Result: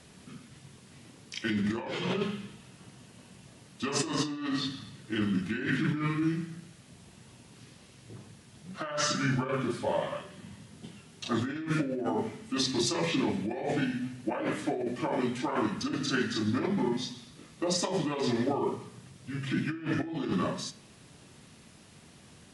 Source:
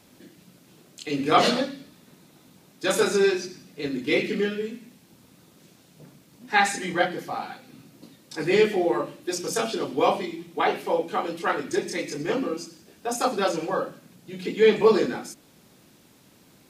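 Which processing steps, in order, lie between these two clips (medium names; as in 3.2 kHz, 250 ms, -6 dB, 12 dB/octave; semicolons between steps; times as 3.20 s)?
compressor with a negative ratio -28 dBFS, ratio -1; flange 0.12 Hz, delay 9.1 ms, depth 5.2 ms, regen +83%; speed mistake 45 rpm record played at 33 rpm; trim +2 dB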